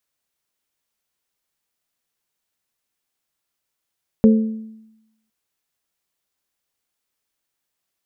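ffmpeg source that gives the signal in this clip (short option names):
-f lavfi -i "aevalsrc='0.473*pow(10,-3*t/0.92)*sin(2*PI*220*t)+0.2*pow(10,-3*t/0.566)*sin(2*PI*440*t)+0.0841*pow(10,-3*t/0.498)*sin(2*PI*528*t)':d=1.06:s=44100"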